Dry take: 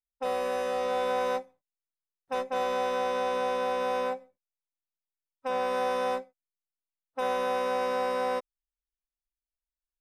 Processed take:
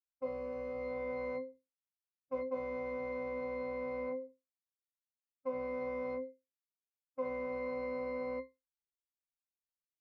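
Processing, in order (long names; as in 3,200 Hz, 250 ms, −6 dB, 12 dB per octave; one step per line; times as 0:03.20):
noise gate −49 dBFS, range −10 dB
resonances in every octave C, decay 0.21 s
level +5 dB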